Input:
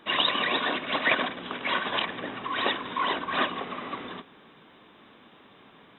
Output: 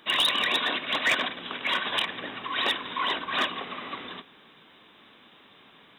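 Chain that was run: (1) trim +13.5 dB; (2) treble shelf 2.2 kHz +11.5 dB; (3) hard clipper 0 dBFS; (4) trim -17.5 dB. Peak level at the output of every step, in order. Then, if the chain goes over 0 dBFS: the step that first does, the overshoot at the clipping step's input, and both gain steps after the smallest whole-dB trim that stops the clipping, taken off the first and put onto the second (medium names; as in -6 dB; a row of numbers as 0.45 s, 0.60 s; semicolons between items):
+6.0 dBFS, +10.0 dBFS, 0.0 dBFS, -17.5 dBFS; step 1, 10.0 dB; step 1 +3.5 dB, step 4 -7.5 dB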